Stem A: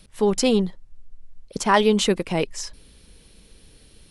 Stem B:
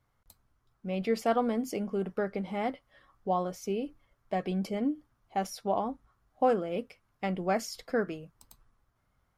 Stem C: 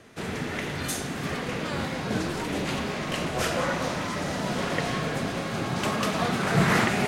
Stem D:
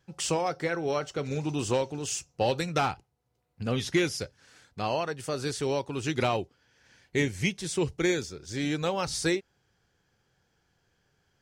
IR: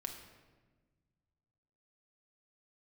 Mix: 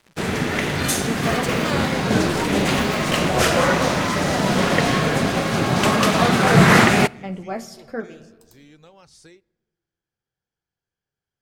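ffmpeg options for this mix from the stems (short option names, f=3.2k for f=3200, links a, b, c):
-filter_complex "[0:a]highshelf=f=5k:g=10.5,aeval=exprs='val(0)*sgn(sin(2*PI*860*n/s))':c=same,adelay=1050,volume=-16dB[a];[1:a]flanger=delay=7.4:depth=6.3:regen=50:speed=0.86:shape=triangular,volume=1dB,asplit=2[b][c];[c]volume=-3.5dB[d];[2:a]acontrast=78,aeval=exprs='sgn(val(0))*max(abs(val(0))-0.01,0)':c=same,volume=2.5dB,asplit=2[e][f];[f]volume=-17dB[g];[3:a]acompressor=threshold=-27dB:ratio=6,volume=-18dB,asplit=3[h][i][j];[i]volume=-20dB[k];[j]apad=whole_len=413435[l];[b][l]sidechaincompress=threshold=-52dB:ratio=8:attack=16:release=102[m];[4:a]atrim=start_sample=2205[n];[d][g][k]amix=inputs=3:normalize=0[o];[o][n]afir=irnorm=-1:irlink=0[p];[a][m][e][h][p]amix=inputs=5:normalize=0"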